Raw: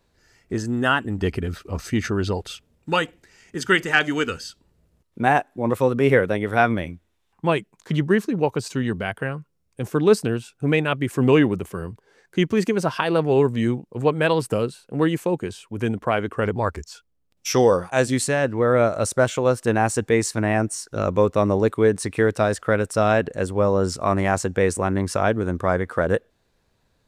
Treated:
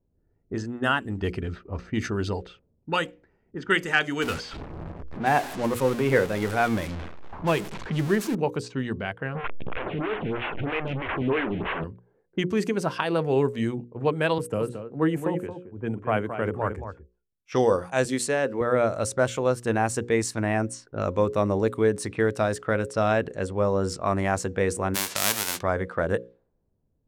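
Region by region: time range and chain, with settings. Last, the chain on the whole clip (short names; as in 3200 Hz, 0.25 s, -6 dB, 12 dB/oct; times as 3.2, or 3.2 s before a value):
4.22–8.35 zero-crossing step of -23 dBFS + tremolo triangle 3.7 Hz, depth 35%
9.35–11.84 delta modulation 16 kbps, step -15.5 dBFS + transient shaper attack -9 dB, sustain -3 dB + photocell phaser 3.1 Hz
14.38–17.52 bell 4500 Hz -12.5 dB 1.1 oct + echo 0.224 s -6.5 dB + three-band expander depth 70%
18.05–18.61 HPF 190 Hz + bell 450 Hz +5 dB 0.33 oct
24.94–25.61 spectral whitening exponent 0.1 + HPF 140 Hz
whole clip: notches 60/120/180/240/300/360/420/480/540 Hz; low-pass opened by the level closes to 370 Hz, open at -19 dBFS; gain -4 dB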